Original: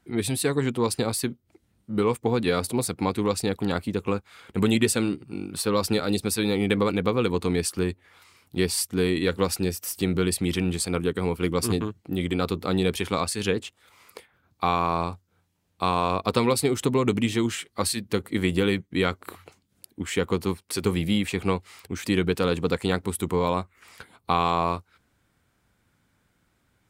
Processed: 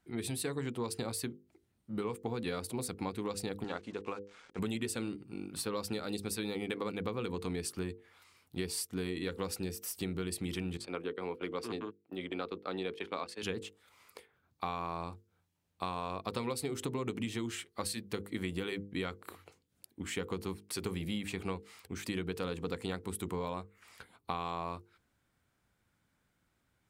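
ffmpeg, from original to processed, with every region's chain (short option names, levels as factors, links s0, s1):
-filter_complex "[0:a]asettb=1/sr,asplit=3[s0][s1][s2];[s0]atrim=end=3.644[s3];[s1]atrim=start=3.64:end=4.59,asetpts=PTS-STARTPTS,afade=t=in:d=0.004:c=qsin,afade=t=out:st=0.946:d=0.004:c=qsin,bass=f=250:g=-12,treble=f=4000:g=-9,acrusher=bits=7:mix=0:aa=0.5,lowpass=f=8400:w=0.5412,lowpass=f=8400:w=1.3066[s4];[s2]atrim=start=4.586[s5];[s3][s4]acrossfade=d=0.004:c1=hsin:c2=qsin[s6];[s6][s5]acrossfade=d=0.004:c1=qsin:c2=hsin,asettb=1/sr,asplit=3[s7][s8][s9];[s7]atrim=end=10.774[s10];[s8]atrim=start=10.77:end=13.43,asetpts=PTS-STARTPTS,afade=t=in:d=0.004:c=qsin,afade=t=out:st=2.656:d=0.004:c=qsin,agate=range=0.158:threshold=0.0282:ratio=16:release=100:detection=peak,acrossover=split=250 4400:gain=0.141 1 0.158[s11][s12][s13];[s11][s12][s13]amix=inputs=3:normalize=0[s14];[s9]atrim=start=13.426[s15];[s10][s14]acrossfade=d=0.004:c1=hsin:c2=qsin[s16];[s16][s15]acrossfade=d=0.004:c1=qsin:c2=hsin,bandreject=f=50:t=h:w=6,bandreject=f=100:t=h:w=6,bandreject=f=150:t=h:w=6,bandreject=f=200:t=h:w=6,bandreject=f=250:t=h:w=6,bandreject=f=300:t=h:w=6,bandreject=f=350:t=h:w=6,bandreject=f=400:t=h:w=6,bandreject=f=450:t=h:w=6,bandreject=f=500:t=h:w=6,acompressor=threshold=0.0562:ratio=4,volume=0.398"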